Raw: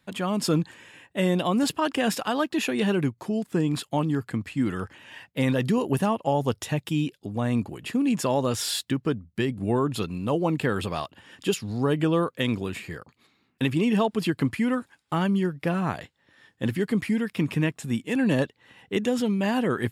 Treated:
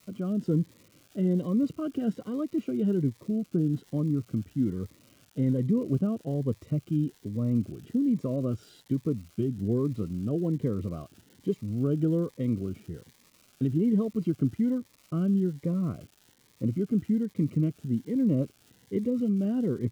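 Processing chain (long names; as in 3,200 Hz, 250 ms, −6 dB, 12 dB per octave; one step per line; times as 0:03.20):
moving average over 51 samples
surface crackle 400 per second −44 dBFS
phaser whose notches keep moving one way rising 1.2 Hz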